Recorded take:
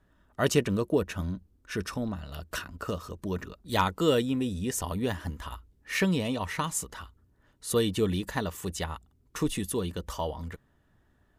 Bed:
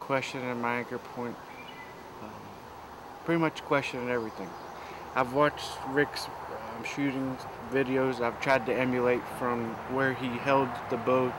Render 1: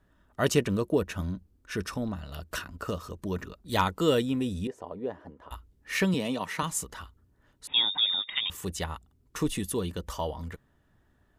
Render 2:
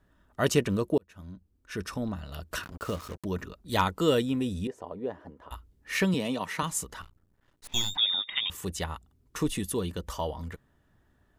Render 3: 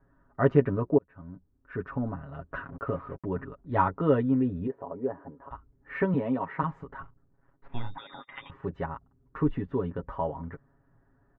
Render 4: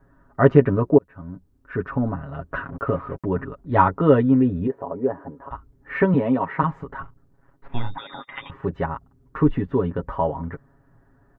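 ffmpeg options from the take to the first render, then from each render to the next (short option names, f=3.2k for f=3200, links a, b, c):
-filter_complex "[0:a]asettb=1/sr,asplit=3[a][b][c];[a]atrim=end=4.674[d];[b]atrim=start=4.67:end=5.51,asetpts=PTS-STARTPTS,afade=t=in:d=0.004:c=qsin,afade=t=out:st=0.836:d=0.004:c=qsin,bandpass=f=500:t=q:w=1.5[e];[c]atrim=start=5.506[f];[d][e]acrossfade=d=0.004:c1=hsin:c2=qsin[g];[g][f]acrossfade=d=0.004:c1=qsin:c2=hsin,asettb=1/sr,asplit=3[h][i][j];[h]atrim=end=6.144[k];[i]atrim=start=6.14:end=6.63,asetpts=PTS-STARTPTS,afade=t=in:d=0.004:c=qsin,afade=t=out:st=0.486:d=0.004:c=qsin,highpass=f=140:w=0.5412,highpass=f=140:w=1.3066[l];[j]atrim=start=6.626[m];[k][l]acrossfade=d=0.004:c1=hsin:c2=qsin[n];[n][m]acrossfade=d=0.004:c1=qsin:c2=hsin,asettb=1/sr,asplit=3[o][p][q];[o]atrim=end=7.674[r];[p]atrim=start=7.67:end=8.5,asetpts=PTS-STARTPTS,afade=t=in:d=0.004:c=qsin,afade=t=out:st=0.826:d=0.004:c=qsin,lowpass=f=3.2k:t=q:w=0.5098,lowpass=f=3.2k:t=q:w=0.6013,lowpass=f=3.2k:t=q:w=0.9,lowpass=f=3.2k:t=q:w=2.563,afreqshift=-3800[s];[q]atrim=start=8.496[t];[r][s]acrossfade=d=0.004:c1=hsin:c2=qsin[u];[u][t]acrossfade=d=0.004:c1=qsin:c2=hsin"
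-filter_complex "[0:a]asettb=1/sr,asplit=3[a][b][c];[a]atrim=end=2.634[d];[b]atrim=start=2.63:end=3.25,asetpts=PTS-STARTPTS,afade=t=in:d=0.004:c=qsin,afade=t=out:st=0.616:d=0.004:c=qsin,acrusher=bits=6:mix=0:aa=0.5[e];[c]atrim=start=3.246[f];[d][e]acrossfade=d=0.004:c1=hsin:c2=qsin[g];[g][f]acrossfade=d=0.004:c1=qsin:c2=hsin,asettb=1/sr,asplit=3[h][i][j];[h]atrim=end=7.024[k];[i]atrim=start=7.02:end=7.97,asetpts=PTS-STARTPTS,afade=t=in:d=0.004:c=qsin,afade=t=out:st=0.946:d=0.004:c=qsin,aeval=exprs='max(val(0),0)':c=same[l];[j]atrim=start=7.966[m];[k][l]acrossfade=d=0.004:c1=hsin:c2=qsin[n];[n][m]acrossfade=d=0.004:c1=qsin:c2=hsin,asplit=2[o][p];[o]atrim=end=0.98,asetpts=PTS-STARTPTS,afade=t=out:st=0.976:d=0.004:c=hsin[q];[p]atrim=start=0.98,asetpts=PTS-STARTPTS,afade=t=in:d=1.08[r];[q][r]concat=n=2:v=0:a=1"
-af "lowpass=f=1.6k:w=0.5412,lowpass=f=1.6k:w=1.3066,aecho=1:1:7.3:0.75"
-af "volume=8dB,alimiter=limit=-2dB:level=0:latency=1"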